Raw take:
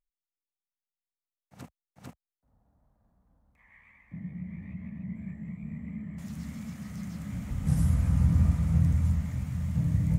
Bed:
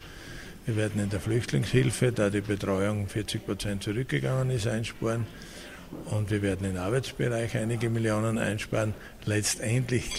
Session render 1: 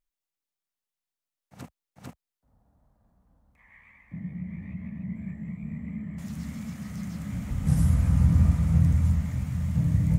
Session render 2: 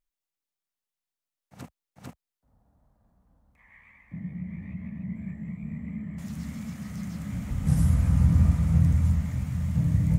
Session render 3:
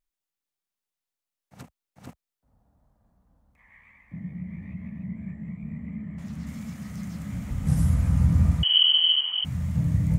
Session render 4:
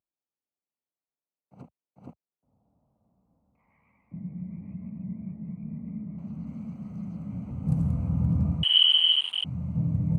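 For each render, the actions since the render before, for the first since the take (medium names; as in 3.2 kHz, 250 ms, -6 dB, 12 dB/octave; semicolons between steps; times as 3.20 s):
trim +3 dB
no audible change
1.62–2.07 s: compression 2:1, threshold -44 dBFS; 5.08–6.47 s: treble shelf 5.9 kHz -10 dB; 8.63–9.45 s: frequency inversion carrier 3.1 kHz
local Wiener filter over 25 samples; high-pass 120 Hz 12 dB/octave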